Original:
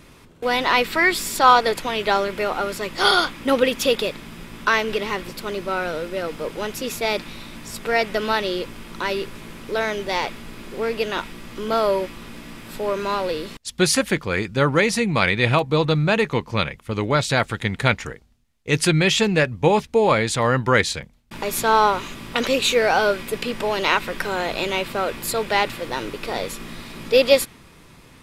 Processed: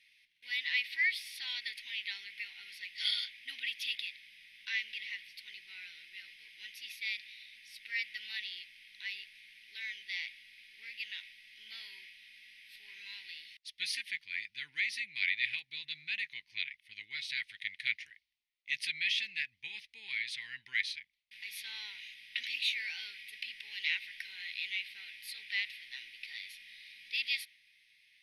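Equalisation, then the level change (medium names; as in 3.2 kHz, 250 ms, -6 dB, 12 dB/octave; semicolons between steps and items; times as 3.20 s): boxcar filter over 6 samples; elliptic high-pass 2 kHz, stop band 40 dB; -7.0 dB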